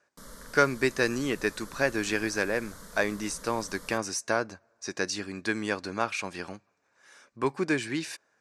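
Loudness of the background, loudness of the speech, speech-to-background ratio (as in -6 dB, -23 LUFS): -47.5 LUFS, -30.0 LUFS, 17.5 dB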